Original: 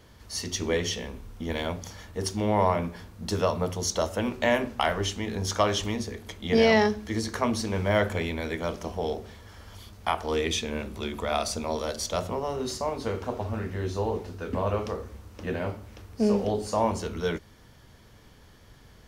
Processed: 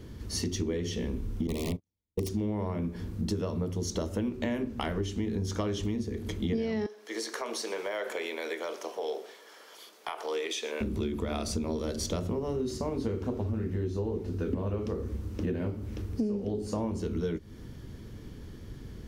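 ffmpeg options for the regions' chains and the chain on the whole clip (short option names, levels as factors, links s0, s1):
-filter_complex "[0:a]asettb=1/sr,asplit=3[s0][s1][s2];[s0]atrim=end=1.474[s3];[s1]atrim=start=1.47:end=2.29,asetpts=PTS-STARTPTS,afade=t=in:d=0.004:c=qsin,afade=t=out:st=0.816:d=0.004:c=qsin,agate=range=0.002:threshold=0.02:ratio=16:release=100:detection=peak,aeval=exprs='(mod(11.9*val(0)+1,2)-1)/11.9':c=same,asuperstop=centerf=1500:order=12:qfactor=2.1[s4];[s2]atrim=start=2.286[s5];[s3][s4]acrossfade=d=0.004:c1=hsin:c2=qsin[s6];[s6][s5]acrossfade=d=0.004:c1=qsin:c2=hsin,asettb=1/sr,asplit=3[s7][s8][s9];[s7]atrim=end=6.864[s10];[s8]atrim=start=6.86:end=10.81,asetpts=PTS-STARTPTS,afade=t=in:d=0.004:c=qsin,afade=t=out:st=3.946:d=0.004:c=qsin,highpass=f=530:w=0.5412,highpass=f=530:w=1.3066,acompressor=threshold=0.0282:ratio=3:attack=3.2:release=140:knee=1:detection=peak,aecho=1:1:120:0.126,atrim=end_sample=174195[s11];[s9]atrim=start=10.806[s12];[s10][s11]acrossfade=d=0.004:c1=hsin:c2=qsin[s13];[s13][s12]acrossfade=d=0.004:c1=qsin:c2=hsin,lowshelf=f=490:t=q:w=1.5:g=10,acompressor=threshold=0.0398:ratio=10"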